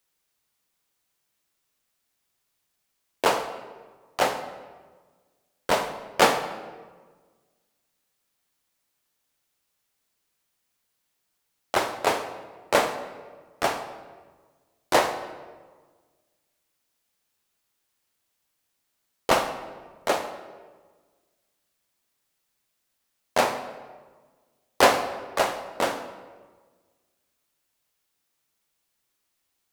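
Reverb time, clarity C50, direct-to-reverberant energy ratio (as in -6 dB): 1.5 s, 10.0 dB, 8.5 dB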